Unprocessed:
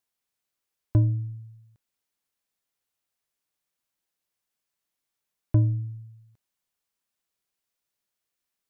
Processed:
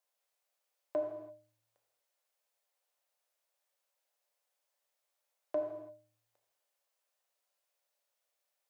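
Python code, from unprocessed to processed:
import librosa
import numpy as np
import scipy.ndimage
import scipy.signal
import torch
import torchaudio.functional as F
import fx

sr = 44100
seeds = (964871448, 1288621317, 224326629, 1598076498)

y = fx.ladder_highpass(x, sr, hz=510.0, resonance_pct=60)
y = fx.rev_gated(y, sr, seeds[0], gate_ms=360, shape='falling', drr_db=1.0)
y = F.gain(torch.from_numpy(y), 7.5).numpy()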